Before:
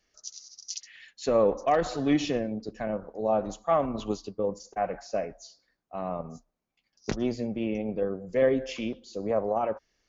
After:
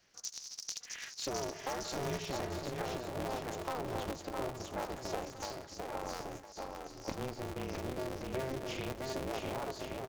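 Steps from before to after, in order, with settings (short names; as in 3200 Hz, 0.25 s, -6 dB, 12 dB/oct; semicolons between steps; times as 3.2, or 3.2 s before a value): low shelf 130 Hz -6.5 dB; in parallel at -1.5 dB: limiter -20.5 dBFS, peak gain reduction 8.5 dB; on the sum: compressor 5:1, threshold -37 dBFS, peak gain reduction 18.5 dB; bouncing-ball echo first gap 0.66 s, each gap 0.7×, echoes 5; polarity switched at an audio rate 130 Hz; gain -1.5 dB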